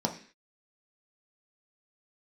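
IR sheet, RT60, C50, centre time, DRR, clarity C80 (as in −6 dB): 0.45 s, 11.0 dB, 13 ms, 1.5 dB, 15.5 dB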